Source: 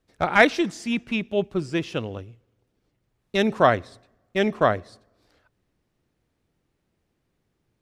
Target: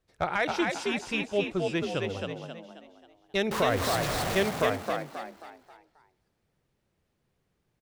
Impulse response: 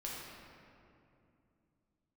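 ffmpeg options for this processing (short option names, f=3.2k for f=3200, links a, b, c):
-filter_complex "[0:a]asettb=1/sr,asplit=3[a][b][c];[a]atrim=end=3.514[d];[b]atrim=start=3.51:end=4.43,asetpts=PTS-STARTPTS,afade=t=in:d=0.004:c=qsin,afade=t=out:st=0.916:d=0.004:c=qsin,aeval=exprs='val(0)+0.5*0.075*sgn(val(0))':c=same[e];[c]atrim=start=4.426[f];[d][e]acrossfade=d=0.004:c1=hsin:c2=qsin[g];[g][f]acrossfade=d=0.004:c1=qsin:c2=hsin,equalizer=f=250:t=o:w=0.55:g=-8.5,alimiter=limit=-13dB:level=0:latency=1:release=143,asplit=6[h][i][j][k][l][m];[i]adelay=268,afreqshift=55,volume=-3.5dB[n];[j]adelay=536,afreqshift=110,volume=-11.2dB[o];[k]adelay=804,afreqshift=165,volume=-19dB[p];[l]adelay=1072,afreqshift=220,volume=-26.7dB[q];[m]adelay=1340,afreqshift=275,volume=-34.5dB[r];[h][n][o][p][q][r]amix=inputs=6:normalize=0,volume=-3dB"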